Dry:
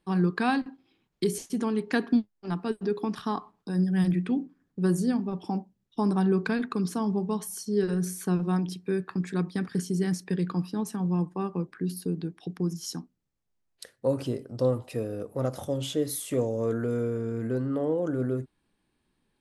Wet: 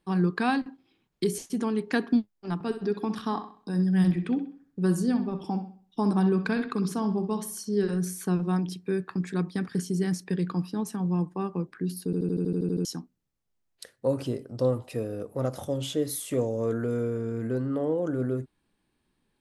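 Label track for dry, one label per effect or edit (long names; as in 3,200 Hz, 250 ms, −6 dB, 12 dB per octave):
2.540000	7.960000	bucket-brigade delay 64 ms, stages 2,048, feedback 37%, level −10 dB
12.050000	12.050000	stutter in place 0.08 s, 10 plays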